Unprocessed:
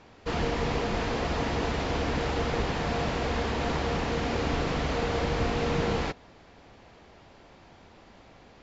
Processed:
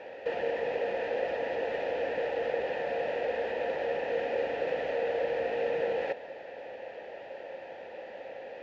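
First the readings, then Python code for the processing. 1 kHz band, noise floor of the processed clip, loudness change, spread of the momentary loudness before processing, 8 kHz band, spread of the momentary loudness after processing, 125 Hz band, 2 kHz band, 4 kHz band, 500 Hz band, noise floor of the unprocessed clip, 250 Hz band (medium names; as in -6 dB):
-5.5 dB, -45 dBFS, -3.0 dB, 2 LU, no reading, 13 LU, -23.5 dB, -3.0 dB, -11.0 dB, +2.0 dB, -54 dBFS, -14.0 dB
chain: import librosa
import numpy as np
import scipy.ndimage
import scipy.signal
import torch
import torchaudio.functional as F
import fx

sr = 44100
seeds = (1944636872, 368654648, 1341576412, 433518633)

p1 = fx.peak_eq(x, sr, hz=890.0, db=14.0, octaves=0.76)
p2 = fx.over_compress(p1, sr, threshold_db=-32.0, ratio=-0.5)
p3 = p1 + (p2 * 10.0 ** (2.0 / 20.0))
p4 = fx.vowel_filter(p3, sr, vowel='e')
y = p4 * 10.0 ** (3.0 / 20.0)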